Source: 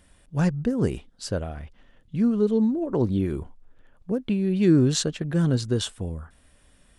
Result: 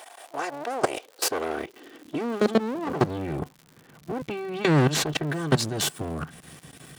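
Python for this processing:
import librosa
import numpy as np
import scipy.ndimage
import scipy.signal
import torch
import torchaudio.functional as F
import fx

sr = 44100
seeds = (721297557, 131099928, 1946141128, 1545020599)

y = fx.lower_of_two(x, sr, delay_ms=2.6)
y = fx.lowpass(y, sr, hz=3200.0, slope=6, at=(3.04, 5.27))
y = fx.level_steps(y, sr, step_db=20)
y = fx.dmg_crackle(y, sr, seeds[0], per_s=130.0, level_db=-55.0)
y = fx.filter_sweep_highpass(y, sr, from_hz=700.0, to_hz=150.0, start_s=0.6, end_s=3.15, q=4.7)
y = fx.spectral_comp(y, sr, ratio=2.0)
y = y * librosa.db_to_amplitude(2.0)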